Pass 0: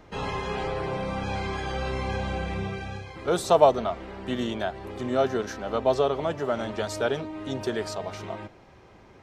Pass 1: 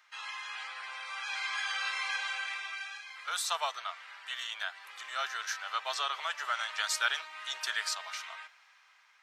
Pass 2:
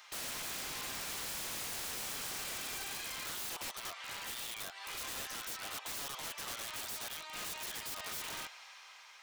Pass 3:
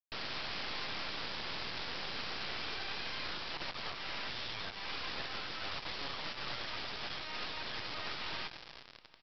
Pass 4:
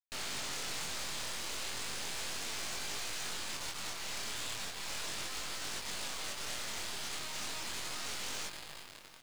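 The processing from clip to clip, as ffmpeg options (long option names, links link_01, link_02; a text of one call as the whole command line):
ffmpeg -i in.wav -af "dynaudnorm=framelen=350:gausssize=9:maxgain=13dB,highpass=frequency=1300:width=0.5412,highpass=frequency=1300:width=1.3066,volume=-3dB" out.wav
ffmpeg -i in.wav -af "acompressor=threshold=-45dB:ratio=4,equalizer=frequency=1600:width_type=o:width=1.4:gain=-10,aeval=exprs='(mod(316*val(0)+1,2)-1)/316':channel_layout=same,volume=14dB" out.wav
ffmpeg -i in.wav -af "aresample=11025,acrusher=bits=5:dc=4:mix=0:aa=0.000001,aresample=44100,aecho=1:1:387|774|1161|1548:0.075|0.0427|0.0244|0.0139,volume=7dB" out.wav
ffmpeg -i in.wav -af "aeval=exprs='0.0126*(abs(mod(val(0)/0.0126+3,4)-2)-1)':channel_layout=same,acrusher=bits=9:mix=0:aa=0.000001,flanger=delay=19.5:depth=7.8:speed=0.35,volume=9dB" out.wav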